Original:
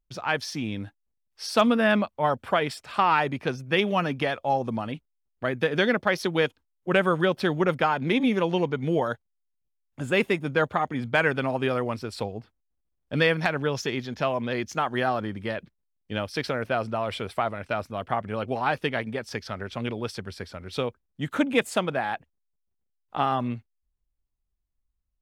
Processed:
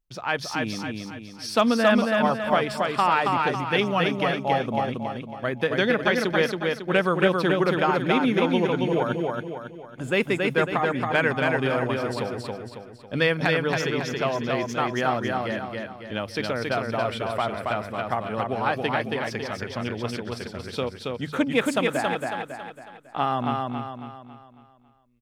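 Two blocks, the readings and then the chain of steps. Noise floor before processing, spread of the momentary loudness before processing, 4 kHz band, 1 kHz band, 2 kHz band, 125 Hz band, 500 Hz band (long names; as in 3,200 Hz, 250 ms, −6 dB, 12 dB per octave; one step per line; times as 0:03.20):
−77 dBFS, 12 LU, +2.0 dB, +2.0 dB, +2.0 dB, +1.5 dB, +2.0 dB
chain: mains-hum notches 50/100/150 Hz
repeating echo 275 ms, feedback 44%, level −3 dB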